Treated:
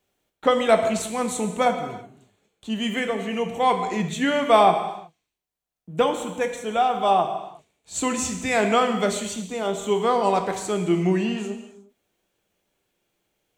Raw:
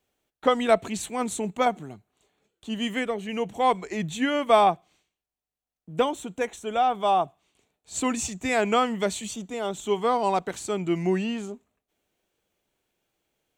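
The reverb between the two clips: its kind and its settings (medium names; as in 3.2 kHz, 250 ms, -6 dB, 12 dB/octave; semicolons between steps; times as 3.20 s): gated-style reverb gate 390 ms falling, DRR 5 dB; trim +2 dB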